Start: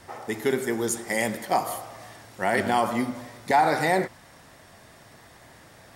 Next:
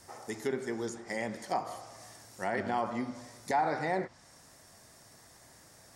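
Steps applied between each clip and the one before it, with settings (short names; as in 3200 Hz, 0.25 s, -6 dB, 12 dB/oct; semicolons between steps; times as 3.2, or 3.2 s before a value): resonant high shelf 4300 Hz +8 dB, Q 1.5; treble ducked by the level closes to 2600 Hz, closed at -20 dBFS; gain -8.5 dB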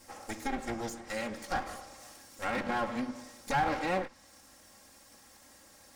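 minimum comb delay 3.7 ms; gain +1.5 dB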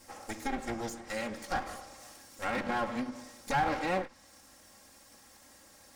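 ending taper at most 250 dB/s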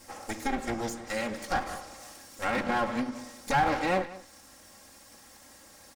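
echo 0.186 s -18 dB; gain +4 dB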